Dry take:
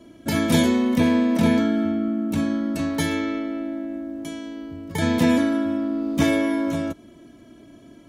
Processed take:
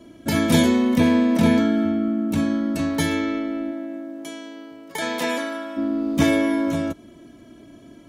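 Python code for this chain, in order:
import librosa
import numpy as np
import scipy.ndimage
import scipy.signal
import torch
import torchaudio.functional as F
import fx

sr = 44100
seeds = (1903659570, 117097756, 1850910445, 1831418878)

y = fx.highpass(x, sr, hz=fx.line((3.71, 270.0), (5.76, 670.0)), slope=12, at=(3.71, 5.76), fade=0.02)
y = y * 10.0 ** (1.5 / 20.0)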